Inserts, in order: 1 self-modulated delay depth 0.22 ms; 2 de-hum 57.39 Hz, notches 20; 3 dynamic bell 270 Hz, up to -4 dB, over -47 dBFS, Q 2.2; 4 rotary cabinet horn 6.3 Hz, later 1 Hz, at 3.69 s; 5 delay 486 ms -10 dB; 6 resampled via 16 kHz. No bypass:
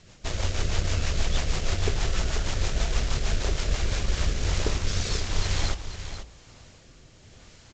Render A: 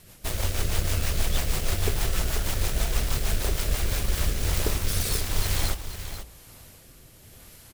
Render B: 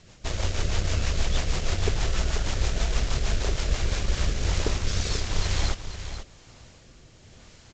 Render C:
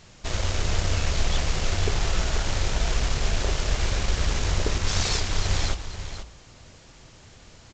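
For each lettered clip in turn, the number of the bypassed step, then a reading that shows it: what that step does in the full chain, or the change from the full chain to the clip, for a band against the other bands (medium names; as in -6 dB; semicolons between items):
6, 8 kHz band +4.0 dB; 2, momentary loudness spread change -3 LU; 4, loudness change +2.0 LU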